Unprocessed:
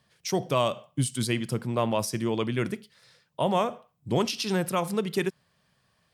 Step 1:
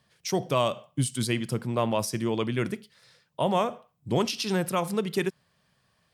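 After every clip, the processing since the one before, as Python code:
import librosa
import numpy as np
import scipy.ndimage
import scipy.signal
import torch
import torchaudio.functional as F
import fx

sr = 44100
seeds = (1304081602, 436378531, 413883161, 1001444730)

y = x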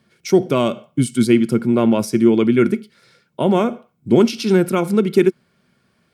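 y = fx.small_body(x, sr, hz=(240.0, 350.0, 1400.0, 2200.0), ring_ms=40, db=14)
y = F.gain(torch.from_numpy(y), 2.5).numpy()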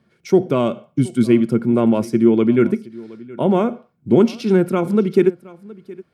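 y = fx.high_shelf(x, sr, hz=2400.0, db=-10.0)
y = y + 10.0 ** (-21.0 / 20.0) * np.pad(y, (int(719 * sr / 1000.0), 0))[:len(y)]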